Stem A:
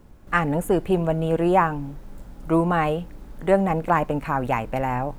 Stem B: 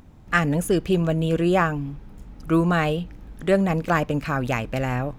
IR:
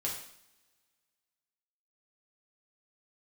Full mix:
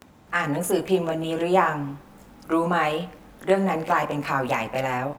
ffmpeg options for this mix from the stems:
-filter_complex "[0:a]dynaudnorm=f=110:g=11:m=1.5,volume=0.398,asplit=2[s0][s1];[s1]volume=0.596[s2];[1:a]acompressor=mode=upward:threshold=0.0112:ratio=2.5,alimiter=limit=0.141:level=0:latency=1:release=25,adelay=21,volume=1.26[s3];[2:a]atrim=start_sample=2205[s4];[s2][s4]afir=irnorm=-1:irlink=0[s5];[s0][s3][s5]amix=inputs=3:normalize=0,highpass=f=390:p=1"

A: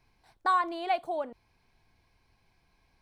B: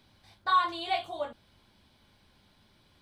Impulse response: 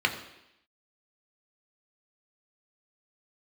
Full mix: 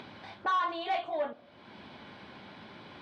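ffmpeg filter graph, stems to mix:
-filter_complex "[0:a]volume=0.631,asplit=2[s0][s1];[s1]volume=0.119[s2];[1:a]volume=1.41[s3];[2:a]atrim=start_sample=2205[s4];[s2][s4]afir=irnorm=-1:irlink=0[s5];[s0][s3][s5]amix=inputs=3:normalize=0,asoftclip=type=tanh:threshold=0.0596,highpass=190,lowpass=2500,acompressor=mode=upward:threshold=0.0178:ratio=2.5"

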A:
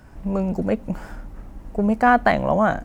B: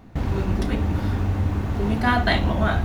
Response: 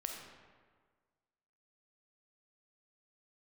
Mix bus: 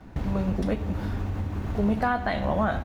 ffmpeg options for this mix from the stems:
-filter_complex "[0:a]lowpass=4100,volume=0.355,asplit=2[s0][s1];[s1]volume=0.473[s2];[1:a]acompressor=threshold=0.0501:ratio=6,adelay=6.3,volume=0.944[s3];[2:a]atrim=start_sample=2205[s4];[s2][s4]afir=irnorm=-1:irlink=0[s5];[s0][s3][s5]amix=inputs=3:normalize=0,alimiter=limit=0.188:level=0:latency=1:release=181"

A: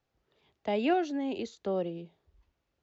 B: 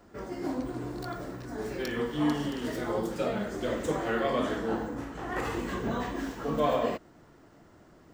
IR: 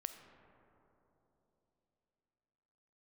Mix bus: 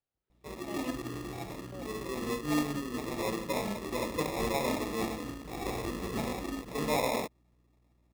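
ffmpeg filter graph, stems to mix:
-filter_complex "[0:a]volume=0.188,asplit=3[s0][s1][s2];[s0]atrim=end=0.91,asetpts=PTS-STARTPTS,afade=t=out:st=0.906:d=0.004:c=hsin[s3];[s1]atrim=start=0.91:end=1.72,asetpts=PTS-STARTPTS,volume=0[s4];[s2]atrim=start=1.72,asetpts=PTS-STARTPTS,afade=t=in:d=0.004:c=hsin[s5];[s3][s4][s5]concat=n=3:v=0:a=1[s6];[1:a]afwtdn=0.0158,acrusher=samples=29:mix=1:aa=0.000001,aeval=exprs='val(0)+0.000562*(sin(2*PI*60*n/s)+sin(2*PI*2*60*n/s)/2+sin(2*PI*3*60*n/s)/3+sin(2*PI*4*60*n/s)/4+sin(2*PI*5*60*n/s)/5)':c=same,adelay=300,volume=0.75[s7];[s6][s7]amix=inputs=2:normalize=0"

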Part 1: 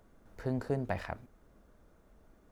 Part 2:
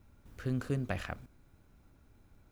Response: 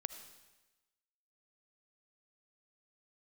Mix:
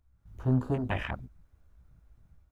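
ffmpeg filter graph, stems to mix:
-filter_complex "[0:a]highpass=760,volume=0.75[s0];[1:a]flanger=delay=15:depth=4:speed=1.7,volume=0.891[s1];[s0][s1]amix=inputs=2:normalize=0,afwtdn=0.00282,dynaudnorm=f=100:g=5:m=3.16"

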